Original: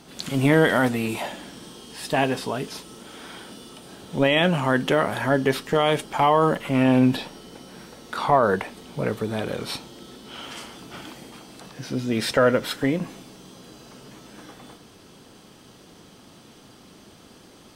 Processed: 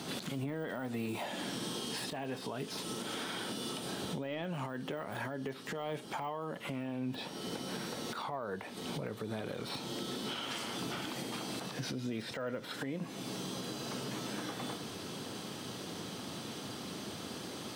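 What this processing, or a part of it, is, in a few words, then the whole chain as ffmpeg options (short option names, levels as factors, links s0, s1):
broadcast voice chain: -af "highpass=f=86:w=0.5412,highpass=f=86:w=1.3066,deesser=0.9,acompressor=threshold=0.01:ratio=3,equalizer=f=3900:t=o:w=0.41:g=3,alimiter=level_in=3.55:limit=0.0631:level=0:latency=1:release=181,volume=0.282,volume=2"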